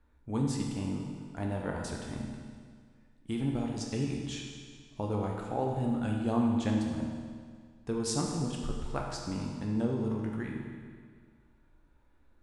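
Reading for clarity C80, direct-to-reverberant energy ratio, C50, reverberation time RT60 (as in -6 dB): 3.5 dB, -0.5 dB, 2.0 dB, 1.9 s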